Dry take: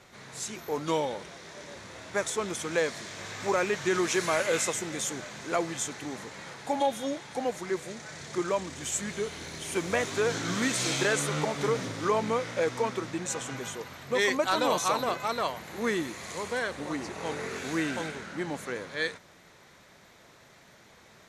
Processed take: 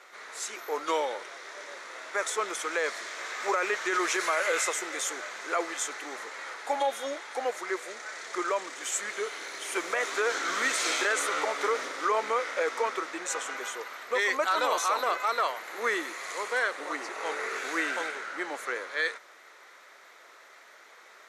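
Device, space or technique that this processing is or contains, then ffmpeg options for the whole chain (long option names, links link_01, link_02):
laptop speaker: -af "highpass=frequency=380:width=0.5412,highpass=frequency=380:width=1.3066,equalizer=frequency=1300:width_type=o:width=0.52:gain=8,equalizer=frequency=2000:width_type=o:width=0.44:gain=5,alimiter=limit=-17.5dB:level=0:latency=1:release=29"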